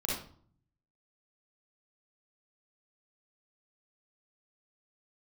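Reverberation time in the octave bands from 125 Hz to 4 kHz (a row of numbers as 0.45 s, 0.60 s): 1.0 s, 0.75 s, 0.55 s, 0.50 s, 0.40 s, 0.35 s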